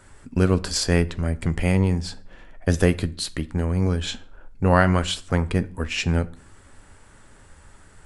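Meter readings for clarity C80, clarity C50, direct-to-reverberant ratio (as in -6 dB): 25.0 dB, 20.5 dB, 12.0 dB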